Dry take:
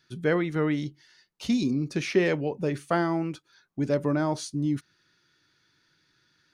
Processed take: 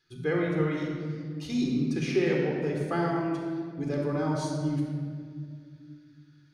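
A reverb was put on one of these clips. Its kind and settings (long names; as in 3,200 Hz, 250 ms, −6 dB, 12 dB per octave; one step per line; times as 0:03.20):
rectangular room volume 3,700 cubic metres, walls mixed, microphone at 3.9 metres
level −8 dB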